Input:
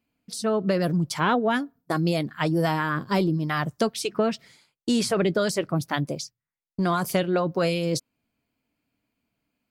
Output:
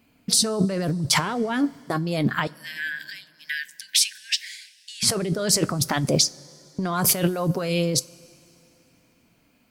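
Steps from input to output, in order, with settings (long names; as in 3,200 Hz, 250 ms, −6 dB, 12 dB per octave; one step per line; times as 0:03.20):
compressor whose output falls as the input rises −32 dBFS, ratio −1
0:02.47–0:05.03: linear-phase brick-wall high-pass 1,500 Hz
coupled-rooms reverb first 0.22 s, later 3 s, from −18 dB, DRR 15.5 dB
level +8.5 dB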